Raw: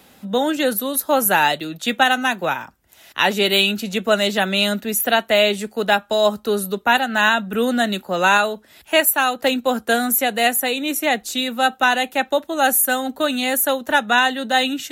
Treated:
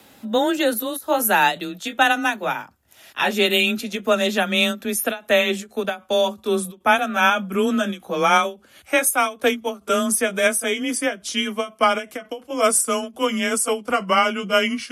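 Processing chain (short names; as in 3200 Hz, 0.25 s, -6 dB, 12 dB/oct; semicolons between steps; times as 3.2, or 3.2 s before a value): gliding pitch shift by -4.5 st starting unshifted; frequency shift +22 Hz; ending taper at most 230 dB/s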